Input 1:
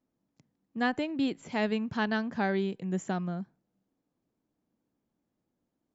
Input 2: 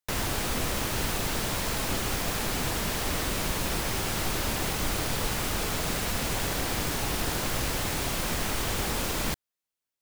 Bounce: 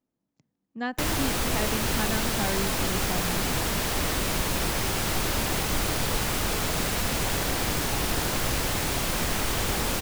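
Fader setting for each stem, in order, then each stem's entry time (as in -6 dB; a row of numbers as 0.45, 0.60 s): -2.5, +2.5 dB; 0.00, 0.90 s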